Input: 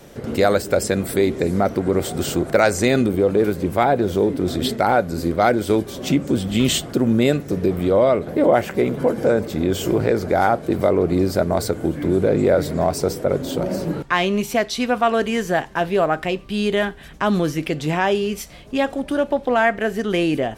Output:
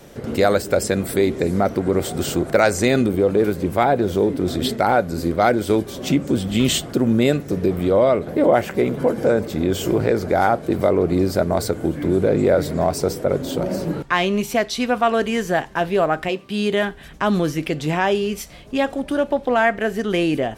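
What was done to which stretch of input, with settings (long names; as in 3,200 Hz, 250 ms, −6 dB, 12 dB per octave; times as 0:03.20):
0:16.28–0:16.87: high-pass filter 220 Hz → 68 Hz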